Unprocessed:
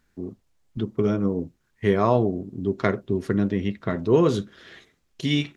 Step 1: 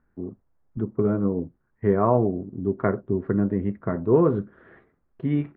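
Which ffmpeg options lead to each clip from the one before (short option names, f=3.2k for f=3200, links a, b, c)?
-af "lowpass=f=1.5k:w=0.5412,lowpass=f=1.5k:w=1.3066"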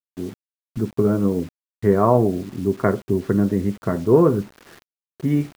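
-af "acrusher=bits=7:mix=0:aa=0.000001,volume=4dB"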